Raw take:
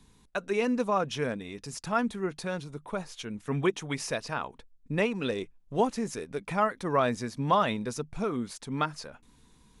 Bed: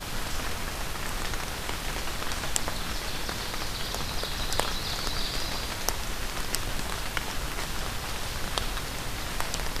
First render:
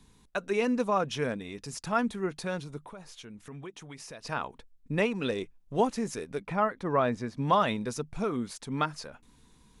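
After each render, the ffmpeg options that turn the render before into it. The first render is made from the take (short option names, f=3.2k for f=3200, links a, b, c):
-filter_complex "[0:a]asettb=1/sr,asplit=3[a][b][c];[a]atrim=end=2.874[d];[b]atrim=start=2.87:end=4.25,asetpts=PTS-STARTPTS,afade=t=in:d=0.004:c=qsin,afade=t=out:st=1.376:d=0.004:c=qsin,acompressor=threshold=-45dB:ratio=3:attack=3.2:release=140:knee=1:detection=peak[e];[c]atrim=start=4.246[f];[d][e]acrossfade=d=0.004:c1=hsin:c2=qsin[g];[g][f]acrossfade=d=0.004:c1=qsin:c2=hsin,asettb=1/sr,asplit=3[h][i][j];[h]atrim=end=6.424[k];[i]atrim=start=6.42:end=7.38,asetpts=PTS-STARTPTS,afade=t=in:d=0.004:c=qsin,afade=t=out:st=0.956:d=0.004:c=qsin,lowpass=f=2.1k:p=1[l];[j]atrim=start=7.376[m];[k][l]acrossfade=d=0.004:c1=hsin:c2=qsin[n];[n][m]acrossfade=d=0.004:c1=qsin:c2=hsin"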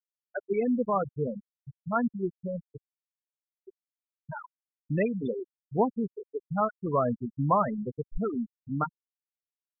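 -af "afftfilt=real='re*gte(hypot(re,im),0.126)':imag='im*gte(hypot(re,im),0.126)':win_size=1024:overlap=0.75,lowshelf=f=120:g=9.5"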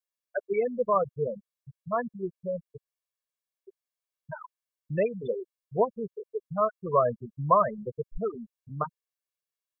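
-af "lowshelf=f=170:g=-8.5,aecho=1:1:1.8:0.83"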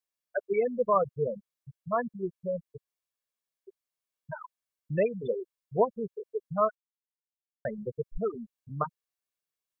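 -filter_complex "[0:a]asplit=3[a][b][c];[a]atrim=end=6.75,asetpts=PTS-STARTPTS,afade=t=out:st=6.746:d=0.004:c=hsin[d];[b]atrim=start=6.75:end=7.65,asetpts=PTS-STARTPTS,volume=0[e];[c]atrim=start=7.65,asetpts=PTS-STARTPTS,afade=t=in:d=0.004:c=hsin[f];[d][e][f]concat=n=3:v=0:a=1"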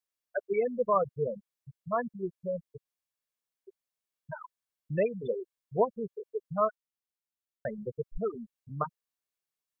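-af "volume=-1.5dB"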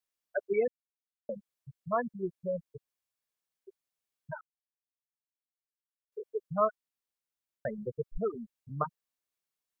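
-filter_complex "[0:a]asplit=5[a][b][c][d][e];[a]atrim=end=0.68,asetpts=PTS-STARTPTS,afade=t=out:st=0.676:d=0.004:c=hsin[f];[b]atrim=start=0.68:end=1.29,asetpts=PTS-STARTPTS,volume=0[g];[c]atrim=start=1.29:end=4.41,asetpts=PTS-STARTPTS,afade=t=in:d=0.004:c=hsin,afade=t=out:st=3.116:d=0.004:c=hsin[h];[d]atrim=start=4.41:end=6.12,asetpts=PTS-STARTPTS,volume=0[i];[e]atrim=start=6.12,asetpts=PTS-STARTPTS,afade=t=in:d=0.004:c=hsin[j];[f][g][h][i][j]concat=n=5:v=0:a=1"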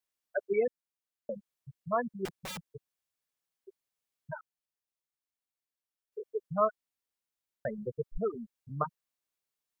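-filter_complex "[0:a]asettb=1/sr,asplit=3[a][b][c];[a]atrim=end=2.254[d];[b]atrim=start=2.25:end=2.71,asetpts=PTS-STARTPTS,afade=t=in:d=0.004:c=qsin,afade=t=out:st=0.456:d=0.004:c=qsin,aeval=exprs='(mod(59.6*val(0)+1,2)-1)/59.6':c=same[e];[c]atrim=start=2.706[f];[d][e]acrossfade=d=0.004:c1=hsin:c2=qsin[g];[g][f]acrossfade=d=0.004:c1=qsin:c2=hsin"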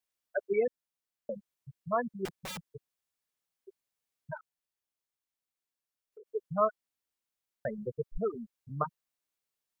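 -filter_complex "[0:a]asettb=1/sr,asplit=3[a][b][c];[a]atrim=end=4.374[d];[b]atrim=start=4.37:end=6.28,asetpts=PTS-STARTPTS,afade=t=in:d=0.004:c=qsin,afade=t=out:st=1.906:d=0.004:c=qsin,acompressor=threshold=-49dB:ratio=6:attack=3.2:release=140:knee=1:detection=peak[e];[c]atrim=start=6.276[f];[d][e]acrossfade=d=0.004:c1=hsin:c2=qsin[g];[g][f]acrossfade=d=0.004:c1=qsin:c2=hsin"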